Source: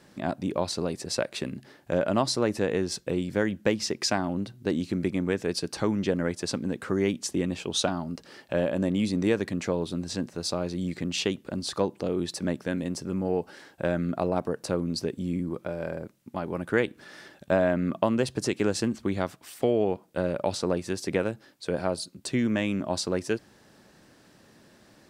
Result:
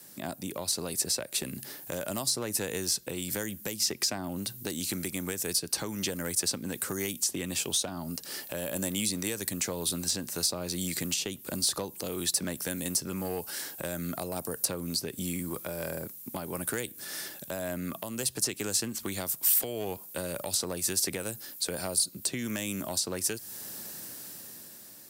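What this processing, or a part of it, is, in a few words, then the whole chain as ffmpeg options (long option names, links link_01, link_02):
FM broadcast chain: -filter_complex "[0:a]highpass=77,dynaudnorm=framelen=250:gausssize=9:maxgain=11dB,acrossover=split=100|780|4800[link_01][link_02][link_03][link_04];[link_01]acompressor=threshold=-42dB:ratio=4[link_05];[link_02]acompressor=threshold=-30dB:ratio=4[link_06];[link_03]acompressor=threshold=-36dB:ratio=4[link_07];[link_04]acompressor=threshold=-42dB:ratio=4[link_08];[link_05][link_06][link_07][link_08]amix=inputs=4:normalize=0,aemphasis=mode=production:type=50fm,alimiter=limit=-18dB:level=0:latency=1:release=225,asoftclip=type=hard:threshold=-21dB,lowpass=frequency=15000:width=0.5412,lowpass=frequency=15000:width=1.3066,aemphasis=mode=production:type=50fm,volume=-4dB"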